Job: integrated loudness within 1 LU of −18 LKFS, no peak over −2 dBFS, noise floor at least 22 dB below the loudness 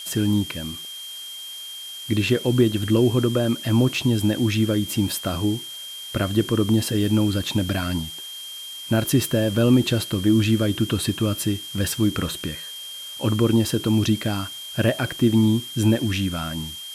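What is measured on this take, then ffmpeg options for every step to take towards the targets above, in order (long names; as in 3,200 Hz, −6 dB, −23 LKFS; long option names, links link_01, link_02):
interfering tone 3,200 Hz; level of the tone −34 dBFS; background noise floor −36 dBFS; target noise floor −44 dBFS; integrated loudness −22.0 LKFS; sample peak −6.5 dBFS; target loudness −18.0 LKFS
→ -af "bandreject=frequency=3200:width=30"
-af "afftdn=noise_reduction=8:noise_floor=-36"
-af "volume=4dB"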